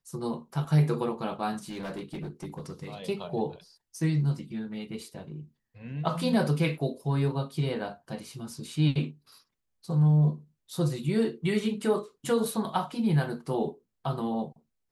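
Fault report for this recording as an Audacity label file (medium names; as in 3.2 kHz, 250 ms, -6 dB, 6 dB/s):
1.630000	2.870000	clipped -32.5 dBFS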